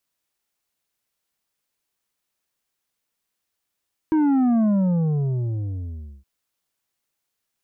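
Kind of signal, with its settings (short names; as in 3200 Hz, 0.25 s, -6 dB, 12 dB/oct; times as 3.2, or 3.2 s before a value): sub drop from 320 Hz, over 2.12 s, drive 7 dB, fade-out 1.62 s, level -16.5 dB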